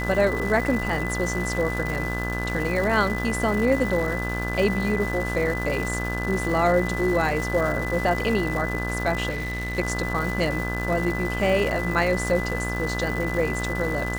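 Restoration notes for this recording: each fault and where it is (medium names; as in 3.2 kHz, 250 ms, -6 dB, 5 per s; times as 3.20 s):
buzz 60 Hz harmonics 30 -29 dBFS
crackle 530 per s -30 dBFS
whine 2 kHz -30 dBFS
9.29–9.79 s: clipped -25 dBFS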